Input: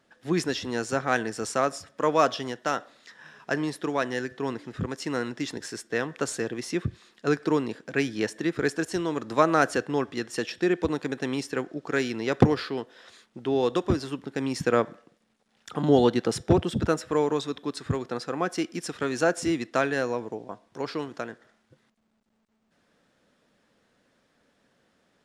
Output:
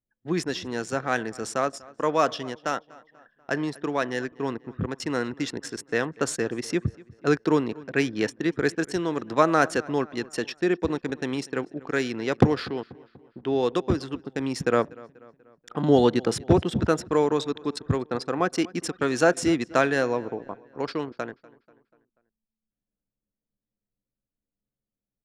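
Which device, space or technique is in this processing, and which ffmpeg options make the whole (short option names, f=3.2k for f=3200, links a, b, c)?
voice memo with heavy noise removal: -filter_complex "[0:a]anlmdn=1,dynaudnorm=f=460:g=21:m=11.5dB,asplit=2[a][b];[b]adelay=243,lowpass=f=3.8k:p=1,volume=-22dB,asplit=2[c][d];[d]adelay=243,lowpass=f=3.8k:p=1,volume=0.51,asplit=2[e][f];[f]adelay=243,lowpass=f=3.8k:p=1,volume=0.51,asplit=2[g][h];[h]adelay=243,lowpass=f=3.8k:p=1,volume=0.51[i];[a][c][e][g][i]amix=inputs=5:normalize=0,volume=-1dB"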